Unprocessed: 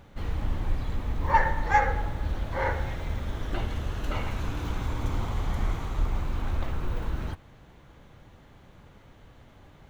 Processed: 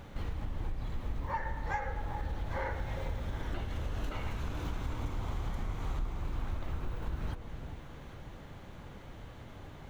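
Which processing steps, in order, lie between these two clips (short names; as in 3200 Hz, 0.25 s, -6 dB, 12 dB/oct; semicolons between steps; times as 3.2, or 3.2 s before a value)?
compressor 6:1, threshold -37 dBFS, peak gain reduction 20 dB; on a send: echo with dull and thin repeats by turns 0.399 s, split 880 Hz, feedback 54%, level -7 dB; on the sum: gain +3.5 dB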